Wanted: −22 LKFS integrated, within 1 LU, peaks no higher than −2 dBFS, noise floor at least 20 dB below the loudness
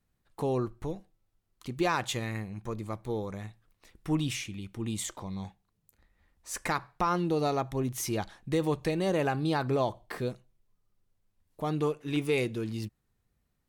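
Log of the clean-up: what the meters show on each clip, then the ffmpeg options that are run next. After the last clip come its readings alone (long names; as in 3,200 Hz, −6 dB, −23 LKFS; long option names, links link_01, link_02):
integrated loudness −32.0 LKFS; sample peak −16.0 dBFS; target loudness −22.0 LKFS
→ -af "volume=10dB"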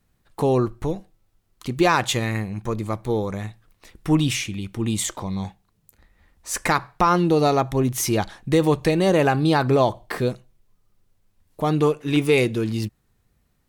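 integrated loudness −22.0 LKFS; sample peak −6.0 dBFS; background noise floor −67 dBFS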